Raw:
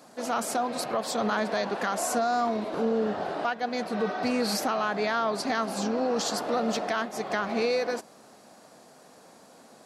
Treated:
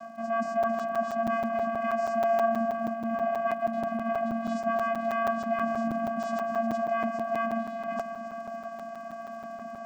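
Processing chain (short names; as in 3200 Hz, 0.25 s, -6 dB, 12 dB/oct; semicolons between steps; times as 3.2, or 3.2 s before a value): reverse; compressor 6:1, threshold -39 dBFS, peak gain reduction 15.5 dB; reverse; soft clip -35.5 dBFS, distortion -18 dB; band shelf 800 Hz +12.5 dB 2.5 oct; fixed phaser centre 1000 Hz, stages 4; echo with dull and thin repeats by turns 0.135 s, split 2500 Hz, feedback 82%, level -10 dB; vocoder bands 8, square 228 Hz; crackle 130/s -59 dBFS; crackling interface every 0.16 s, samples 256, zero, from 0.63; gain +7.5 dB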